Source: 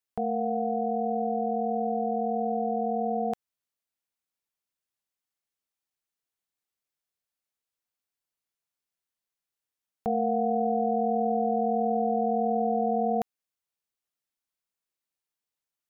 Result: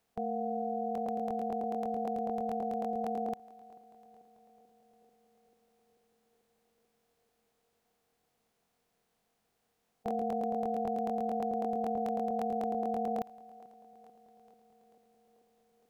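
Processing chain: per-bin compression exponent 0.6; narrowing echo 0.439 s, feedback 84%, band-pass 350 Hz, level -18.5 dB; crackling interface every 0.11 s, samples 1024, repeat, from 0.93; gain -7.5 dB

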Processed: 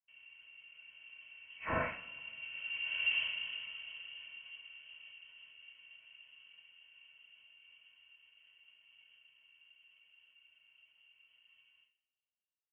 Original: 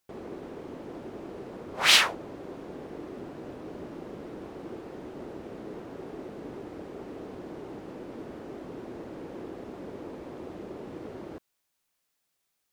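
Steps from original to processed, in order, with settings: Doppler pass-by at 3.11, 34 m/s, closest 5 m; comb 2.4 ms, depth 66%; formant shift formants -4 st; two-slope reverb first 0.42 s, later 2.1 s, from -25 dB, DRR -5 dB; inverted band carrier 3100 Hz

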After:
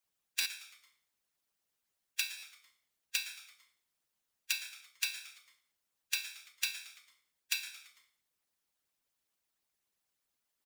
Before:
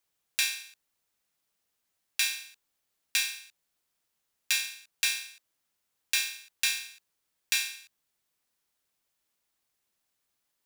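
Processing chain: frequency-shifting echo 0.112 s, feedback 51%, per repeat -130 Hz, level -18 dB; harmonic-percussive split harmonic -18 dB; stuck buffer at 0.4/2.37, samples 512, times 4

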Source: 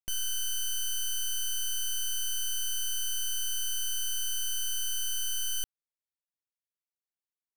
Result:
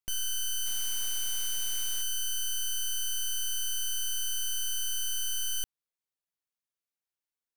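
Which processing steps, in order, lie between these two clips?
0.66–2.02 requantised 8-bit, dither triangular

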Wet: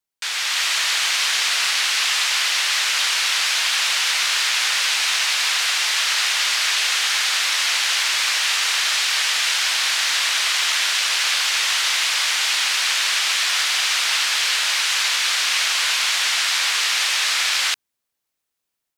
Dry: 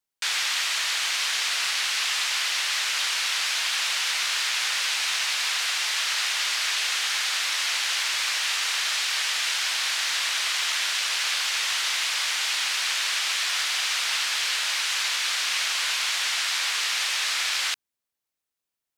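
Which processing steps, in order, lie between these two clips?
AGC gain up to 6 dB

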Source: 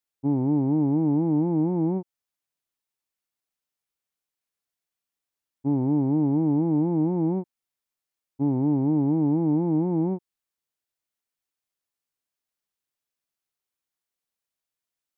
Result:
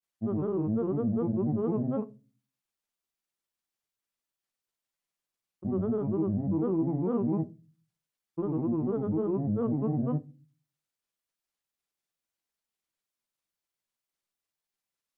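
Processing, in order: limiter -22.5 dBFS, peak gain reduction 7 dB; grains, spray 36 ms, pitch spread up and down by 7 st; on a send: reverb RT60 0.30 s, pre-delay 5 ms, DRR 11 dB

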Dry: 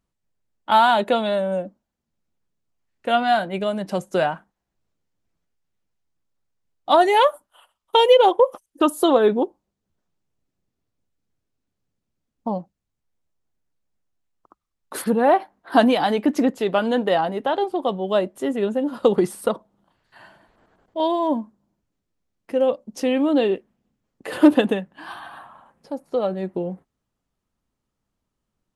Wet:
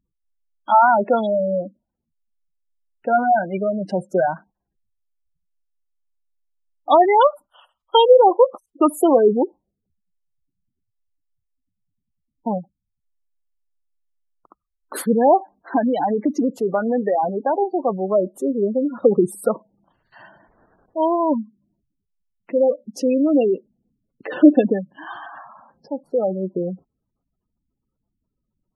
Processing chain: spectral gate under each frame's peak -15 dB strong; 15.36–17.18 compressor, threshold -18 dBFS, peak gain reduction 8 dB; gain +2.5 dB

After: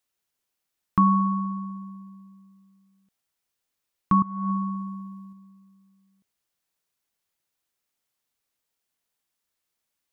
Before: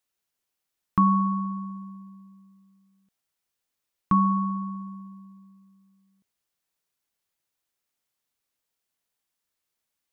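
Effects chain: 4.22–5.33 negative-ratio compressor -28 dBFS, ratio -0.5; gain +1 dB

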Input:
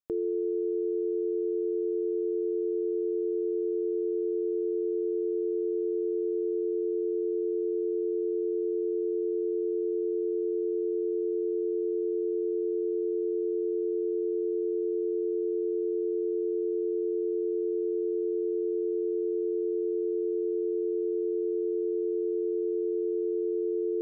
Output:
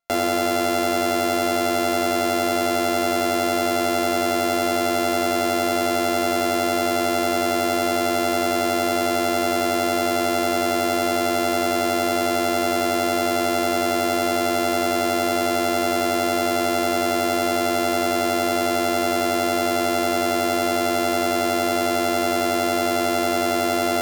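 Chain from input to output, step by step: sample sorter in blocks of 64 samples; gain +8 dB

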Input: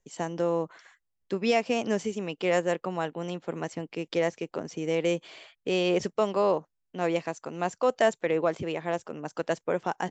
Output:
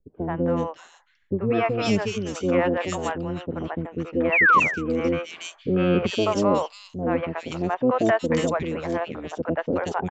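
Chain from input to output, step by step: harmoniser -12 st -6 dB; painted sound fall, 4.24–4.52, 980–2800 Hz -19 dBFS; low-pass opened by the level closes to 670 Hz, open at -20 dBFS; three bands offset in time lows, mids, highs 80/360 ms, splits 550/2500 Hz; gain +5 dB

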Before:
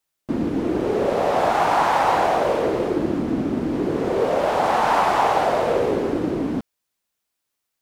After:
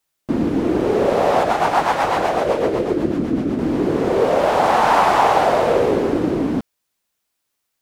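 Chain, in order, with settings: 1.43–3.59 rotary speaker horn 8 Hz; gain +4 dB

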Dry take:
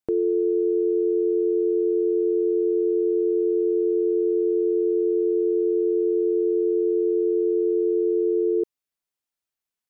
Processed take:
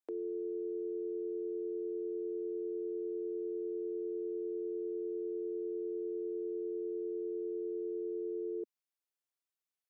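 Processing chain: steep high-pass 260 Hz 36 dB/oct; limiter -25.5 dBFS, peak gain reduction 9.5 dB; gain -7 dB

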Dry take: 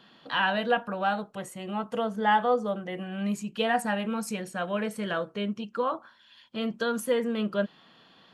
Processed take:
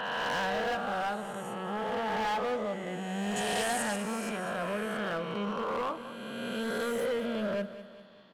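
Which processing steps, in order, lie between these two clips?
spectral swells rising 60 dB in 2.41 s; high shelf 3600 Hz -6.5 dB; overloaded stage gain 22.5 dB; 3.36–3.96 bell 8100 Hz +13 dB 1.5 oct; feedback echo 0.2 s, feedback 49%, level -14 dB; gain -6 dB

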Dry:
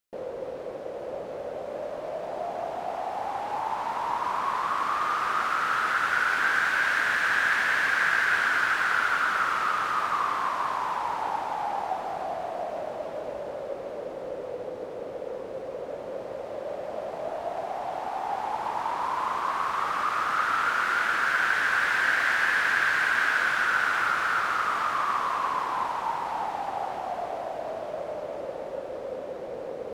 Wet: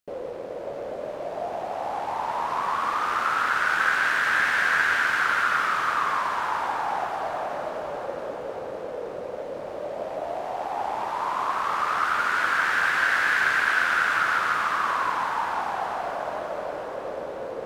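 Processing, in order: granular stretch 0.59×, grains 25 ms; on a send: diffused feedback echo 0.545 s, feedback 58%, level -9 dB; on the sum: gain +2.5 dB

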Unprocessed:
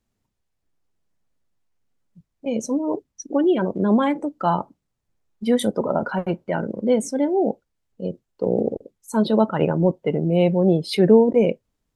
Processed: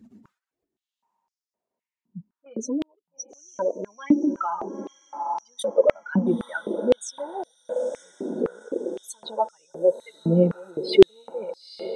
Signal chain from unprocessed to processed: spectral contrast raised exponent 1.9; flange 1.4 Hz, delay 0.4 ms, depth 6.2 ms, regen +20%; reverse; upward compressor, threshold -31 dBFS; reverse; diffused feedback echo 0.916 s, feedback 57%, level -13.5 dB; in parallel at -1 dB: compressor, threshold -35 dBFS, peak gain reduction 21 dB; on the sum: stepped high-pass 3.9 Hz 230–5200 Hz; gain -1.5 dB

